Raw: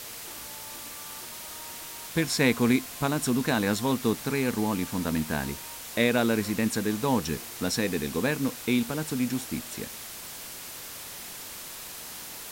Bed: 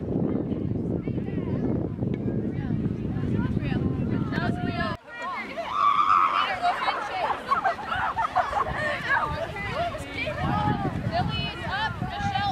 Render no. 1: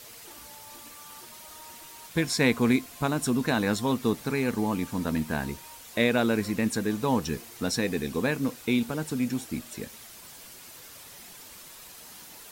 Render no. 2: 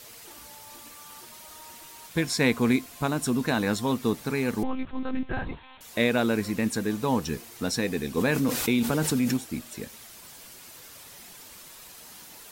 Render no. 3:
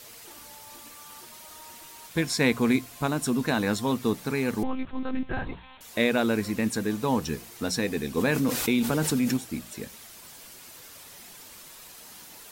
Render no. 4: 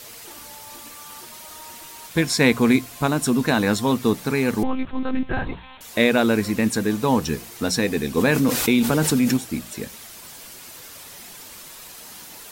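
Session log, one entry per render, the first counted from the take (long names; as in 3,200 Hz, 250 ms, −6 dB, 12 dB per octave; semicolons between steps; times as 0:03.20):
broadband denoise 8 dB, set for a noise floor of −41 dBFS
0:04.63–0:05.81: one-pitch LPC vocoder at 8 kHz 260 Hz; 0:08.17–0:09.37: envelope flattener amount 70%
mains-hum notches 60/120/180 Hz
level +6 dB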